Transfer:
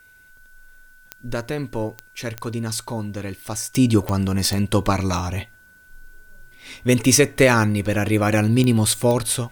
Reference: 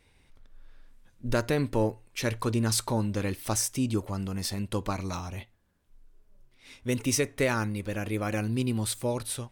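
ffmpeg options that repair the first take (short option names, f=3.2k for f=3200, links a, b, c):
-af "adeclick=t=4,bandreject=f=1.5k:w=30,agate=range=-21dB:threshold=-42dB,asetnsamples=n=441:p=0,asendcmd='3.75 volume volume -11.5dB',volume=0dB"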